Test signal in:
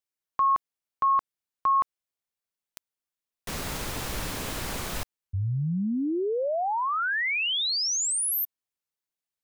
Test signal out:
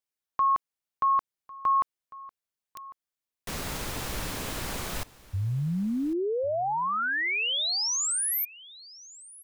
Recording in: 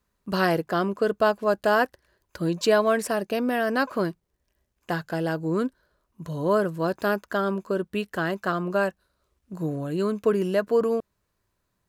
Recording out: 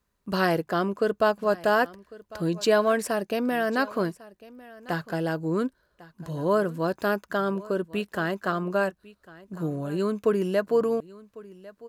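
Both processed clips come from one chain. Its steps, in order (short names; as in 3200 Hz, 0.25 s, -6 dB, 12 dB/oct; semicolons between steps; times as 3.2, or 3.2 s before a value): echo 1.1 s -20.5 dB; gain -1 dB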